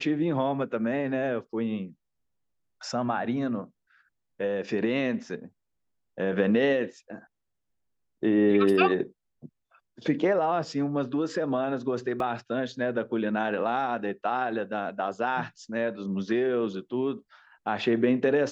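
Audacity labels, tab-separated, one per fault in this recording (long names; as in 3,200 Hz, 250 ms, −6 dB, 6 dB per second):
12.200000	12.200000	drop-out 2.4 ms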